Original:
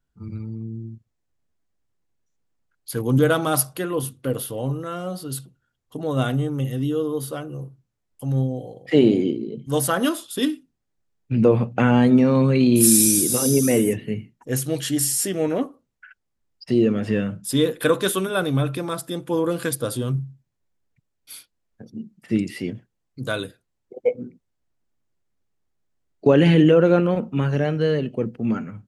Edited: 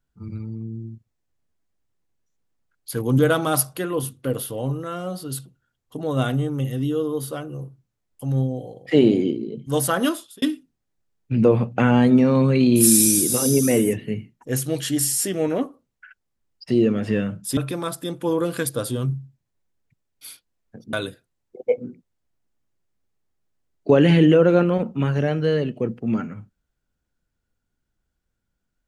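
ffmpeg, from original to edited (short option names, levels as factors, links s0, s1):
-filter_complex "[0:a]asplit=4[s0][s1][s2][s3];[s0]atrim=end=10.42,asetpts=PTS-STARTPTS,afade=t=out:st=10.1:d=0.32[s4];[s1]atrim=start=10.42:end=17.572,asetpts=PTS-STARTPTS,afade=t=in:d=0.004:c=hsin[s5];[s2]atrim=start=18.628:end=21.992[s6];[s3]atrim=start=23.298[s7];[s4][s5]concat=n=2:v=0:a=1[s8];[s8][s6]acrossfade=d=0.004:c1=hsin:c2=hsin[s9];[s9][s7]acrossfade=d=0.004:c1=hsin:c2=hsin"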